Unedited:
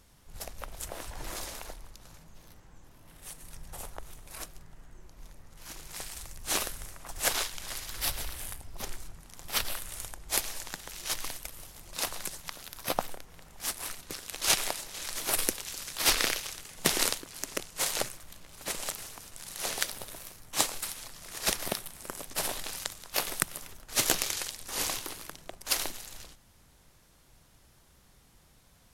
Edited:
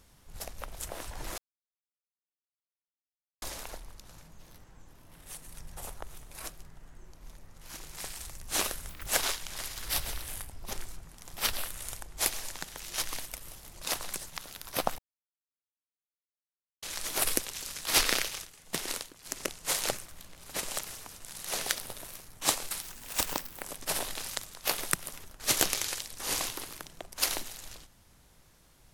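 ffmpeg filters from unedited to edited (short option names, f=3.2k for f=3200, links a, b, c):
-filter_complex "[0:a]asplit=10[a][b][c][d][e][f][g][h][i][j];[a]atrim=end=1.38,asetpts=PTS-STARTPTS,afade=t=out:st=1.376:d=0.004:c=hsin,apad=pad_dur=2.04[k];[b]atrim=start=1.38:end=6.854,asetpts=PTS-STARTPTS,afade=t=in:d=0.004:c=hsin[l];[c]atrim=start=6.85:end=7.18,asetpts=PTS-STARTPTS,asetrate=83349,aresample=44100[m];[d]atrim=start=7.176:end=13.1,asetpts=PTS-STARTPTS,afade=t=out:st=5.92:d=0.004:c=hsin[n];[e]atrim=start=13.1:end=14.94,asetpts=PTS-STARTPTS,volume=0[o];[f]atrim=start=14.94:end=16.57,asetpts=PTS-STARTPTS,afade=t=in:d=0.004:c=hsin,afade=t=out:st=1.47:d=0.16:c=log:silence=0.398107[p];[g]atrim=start=16.57:end=17.37,asetpts=PTS-STARTPTS,volume=-8dB[q];[h]atrim=start=17.37:end=20.944,asetpts=PTS-STARTPTS,afade=t=in:d=0.16:c=log:silence=0.398107[r];[i]atrim=start=20.94:end=22.12,asetpts=PTS-STARTPTS,asetrate=64386,aresample=44100,atrim=end_sample=35642,asetpts=PTS-STARTPTS[s];[j]atrim=start=22.116[t];[k][l]concat=n=2:v=0:a=1[u];[u][m]acrossfade=d=0.004:c1=hsin:c2=hsin[v];[n][o][p][q][r]concat=n=5:v=0:a=1[w];[v][w]acrossfade=d=0.004:c1=hsin:c2=hsin[x];[x][s]acrossfade=d=0.004:c1=hsin:c2=hsin[y];[y][t]acrossfade=d=0.004:c1=hsin:c2=hsin"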